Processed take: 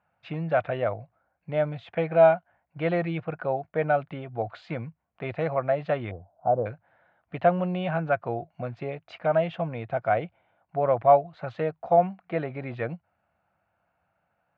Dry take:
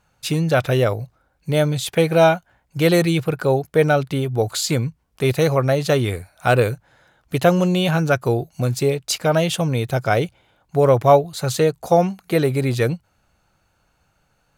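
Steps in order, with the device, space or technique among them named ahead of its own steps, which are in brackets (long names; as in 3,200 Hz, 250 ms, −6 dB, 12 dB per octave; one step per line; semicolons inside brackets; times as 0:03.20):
0:06.11–0:06.66: Butterworth low-pass 900 Hz 36 dB per octave
high-pass filter 73 Hz
bass cabinet (loudspeaker in its box 80–2,400 Hz, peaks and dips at 130 Hz −8 dB, 270 Hz −6 dB, 410 Hz −9 dB, 680 Hz +8 dB)
level −8 dB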